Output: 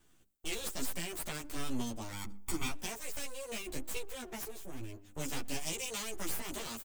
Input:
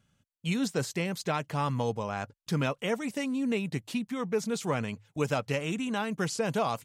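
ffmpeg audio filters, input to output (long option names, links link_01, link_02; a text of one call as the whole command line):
ffmpeg -i in.wav -filter_complex "[0:a]acrossover=split=5200[link_01][link_02];[link_02]acompressor=threshold=-49dB:ratio=4:attack=1:release=60[link_03];[link_01][link_03]amix=inputs=2:normalize=0,bandreject=frequency=50:width_type=h:width=6,bandreject=frequency=100:width_type=h:width=6,bandreject=frequency=150:width_type=h:width=6,bandreject=frequency=200:width_type=h:width=6,acrossover=split=140|3000[link_04][link_05][link_06];[link_05]acompressor=threshold=-46dB:ratio=6[link_07];[link_04][link_07][link_06]amix=inputs=3:normalize=0,asplit=3[link_08][link_09][link_10];[link_08]afade=type=out:start_time=4.48:duration=0.02[link_11];[link_09]equalizer=frequency=125:width_type=o:width=1:gain=-6,equalizer=frequency=500:width_type=o:width=1:gain=-6,equalizer=frequency=1000:width_type=o:width=1:gain=-12,equalizer=frequency=2000:width_type=o:width=1:gain=-6,equalizer=frequency=4000:width_type=o:width=1:gain=-10,equalizer=frequency=8000:width_type=o:width=1:gain=-11,afade=type=in:start_time=4.48:duration=0.02,afade=type=out:start_time=5.03:duration=0.02[link_12];[link_10]afade=type=in:start_time=5.03:duration=0.02[link_13];[link_11][link_12][link_13]amix=inputs=3:normalize=0,aeval=exprs='abs(val(0))':channel_layout=same,asettb=1/sr,asplit=3[link_14][link_15][link_16];[link_14]atrim=end=5.654[link_17];[link_15]atrim=start=5.65:end=6.18,asetpts=PTS-STARTPTS,afade=type=in:duration=0.004:curve=qsin,afade=type=out:start_time=0.526:duration=0.004:curve=qsin,equalizer=frequency=6000:width_type=o:width=1.6:gain=5.5[link_18];[link_16]atrim=start=6.176[link_19];[link_17][link_18]acrossfade=duration=0.004:curve1=hsin:curve2=qsin[link_20];[link_20][link_19]acrossfade=duration=0.004:curve1=qsin:curve2=hsin,asplit=2[link_21][link_22];[link_22]adelay=123,lowpass=frequency=1300:poles=1,volume=-23dB,asplit=2[link_23][link_24];[link_24]adelay=123,lowpass=frequency=1300:poles=1,volume=0.39,asplit=2[link_25][link_26];[link_26]adelay=123,lowpass=frequency=1300:poles=1,volume=0.39[link_27];[link_21][link_23][link_25][link_27]amix=inputs=4:normalize=0,aexciter=amount=2.1:drive=4.7:freq=7000,asettb=1/sr,asplit=3[link_28][link_29][link_30];[link_28]atrim=end=2.124[link_31];[link_29]atrim=start=2.12:end=2.71,asetpts=PTS-STARTPTS,afade=type=in:duration=0.004:curve=qsin,afade=type=out:start_time=0.586:duration=0.004:curve=qsin,aecho=1:1:0.9:0.69,atrim=end_sample=26019[link_32];[link_30]atrim=start=2.706[link_33];[link_31][link_32]acrossfade=duration=0.004:curve1=hsin:curve2=qsin[link_34];[link_34][link_33]acrossfade=duration=0.004:curve1=qsin:curve2=hsin,asplit=2[link_35][link_36];[link_36]adelay=11.7,afreqshift=-1.3[link_37];[link_35][link_37]amix=inputs=2:normalize=1,volume=7dB" out.wav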